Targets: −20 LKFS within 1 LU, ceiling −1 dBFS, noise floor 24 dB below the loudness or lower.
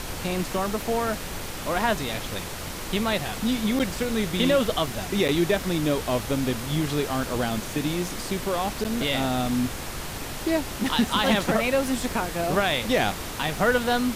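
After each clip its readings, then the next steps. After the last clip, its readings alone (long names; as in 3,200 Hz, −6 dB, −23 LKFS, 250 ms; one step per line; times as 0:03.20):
number of dropouts 3; longest dropout 8.0 ms; background noise floor −34 dBFS; target noise floor −50 dBFS; integrated loudness −25.5 LKFS; sample peak −9.5 dBFS; target loudness −20.0 LKFS
→ repair the gap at 0:03.79/0:05.28/0:08.84, 8 ms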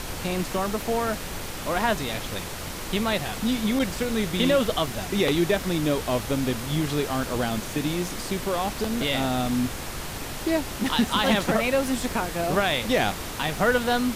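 number of dropouts 0; background noise floor −34 dBFS; target noise floor −50 dBFS
→ noise reduction from a noise print 16 dB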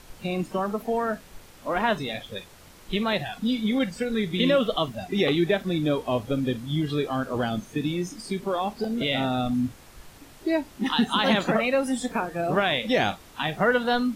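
background noise floor −50 dBFS; integrated loudness −26.0 LKFS; sample peak −10.0 dBFS; target loudness −20.0 LKFS
→ level +6 dB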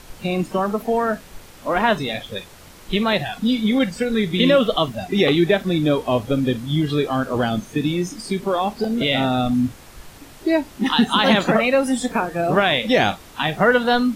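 integrated loudness −20.0 LKFS; sample peak −4.0 dBFS; background noise floor −44 dBFS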